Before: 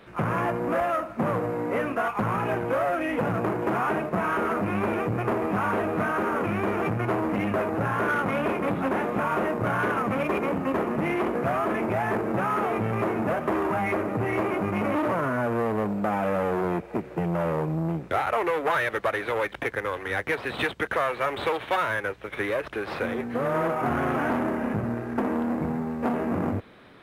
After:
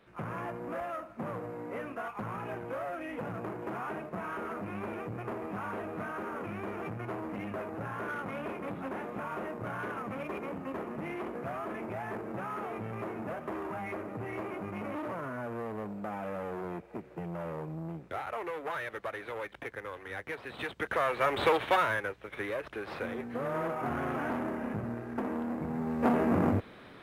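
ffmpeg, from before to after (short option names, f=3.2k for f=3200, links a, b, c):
-af "volume=9dB,afade=t=in:st=20.6:d=0.95:silence=0.223872,afade=t=out:st=21.55:d=0.6:silence=0.354813,afade=t=in:st=25.68:d=0.4:silence=0.398107"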